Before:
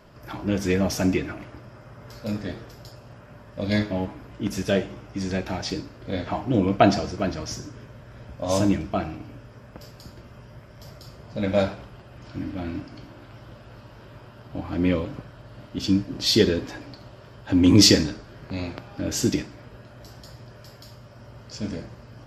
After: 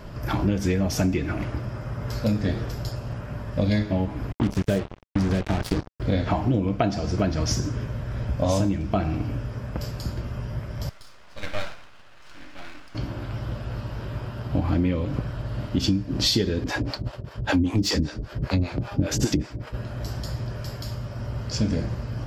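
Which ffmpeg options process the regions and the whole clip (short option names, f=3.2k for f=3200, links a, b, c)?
-filter_complex "[0:a]asettb=1/sr,asplit=3[a][b][c];[a]atrim=end=4.324[d];[b]atrim=start=4.32:end=6,asetpts=PTS-STARTPTS,afade=t=in:d=0.004:c=qsin,afade=t=out:st=1.676:d=0.004:c=qsin,lowpass=f=1.8k:p=1,acrusher=bits=4:mix=0:aa=0.5[e];[c]atrim=start=5.996[f];[d][e]acrossfade=d=0.004:c1=hsin:c2=qsin[g];[g][f]acrossfade=d=0.004:c1=qsin:c2=hsin,asettb=1/sr,asplit=3[h][i][j];[h]atrim=end=10.894[k];[i]atrim=start=10.89:end=12.95,asetpts=PTS-STARTPTS,afade=t=in:d=0.004:c=qsin,afade=t=out:st=2.056:d=0.004:c=qsin,highpass=1.3k,aemphasis=mode=reproduction:type=bsi,aeval=exprs='max(val(0),0)':c=same[l];[j]atrim=start=12.946[m];[k][l]acrossfade=d=0.004:c1=hsin:c2=qsin[n];[n][m]acrossfade=d=0.004:c1=qsin:c2=hsin,asettb=1/sr,asplit=3[o][p][q];[o]atrim=end=16.644[r];[p]atrim=start=16.64:end=19.74,asetpts=PTS-STARTPTS,afade=t=in:d=0.004:c=qsin,afade=t=out:st=3.096:d=0.004:c=qsin,agate=range=-33dB:threshold=-41dB:ratio=3:release=100:detection=peak,acontrast=84,acrossover=split=490[s][t];[s]aeval=exprs='val(0)*(1-1/2+1/2*cos(2*PI*5.1*n/s))':c=same[u];[t]aeval=exprs='val(0)*(1-1/2-1/2*cos(2*PI*5.1*n/s))':c=same[v];[u][v]amix=inputs=2:normalize=0[w];[q]atrim=start=19.736[x];[r][w]acrossfade=d=0.004:c1=hsin:c2=qsin[y];[y][x]acrossfade=d=0.004:c1=qsin:c2=hsin,lowshelf=f=140:g=11,acompressor=threshold=-27dB:ratio=12,volume=8dB"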